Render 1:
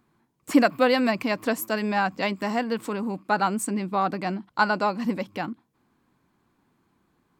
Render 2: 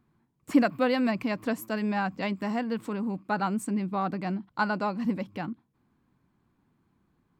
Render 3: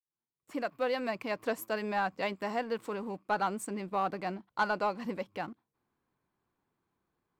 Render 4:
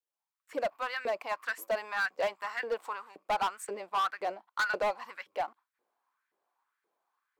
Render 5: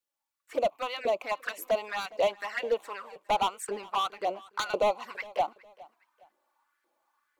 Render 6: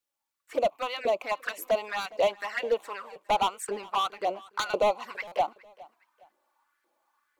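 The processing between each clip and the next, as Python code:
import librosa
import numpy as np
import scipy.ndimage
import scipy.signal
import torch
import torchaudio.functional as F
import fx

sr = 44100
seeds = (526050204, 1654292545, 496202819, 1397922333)

y1 = fx.bass_treble(x, sr, bass_db=8, treble_db=-4)
y1 = F.gain(torch.from_numpy(y1), -6.0).numpy()
y2 = fx.fade_in_head(y1, sr, length_s=1.53)
y2 = fx.low_shelf_res(y2, sr, hz=330.0, db=-7.5, q=1.5)
y2 = fx.leveller(y2, sr, passes=1)
y2 = F.gain(torch.from_numpy(y2), -5.0).numpy()
y3 = fx.filter_lfo_highpass(y2, sr, shape='saw_up', hz=1.9, low_hz=430.0, high_hz=1900.0, q=3.4)
y3 = np.clip(y3, -10.0 ** (-24.0 / 20.0), 10.0 ** (-24.0 / 20.0))
y3 = F.gain(torch.from_numpy(y3), -1.5).numpy()
y4 = fx.rider(y3, sr, range_db=3, speed_s=2.0)
y4 = fx.env_flanger(y4, sr, rest_ms=3.5, full_db=-31.0)
y4 = fx.echo_feedback(y4, sr, ms=412, feedback_pct=34, wet_db=-22.0)
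y4 = F.gain(torch.from_numpy(y4), 6.5).numpy()
y5 = fx.buffer_glitch(y4, sr, at_s=(5.27,), block=256, repeats=7)
y5 = F.gain(torch.from_numpy(y5), 1.5).numpy()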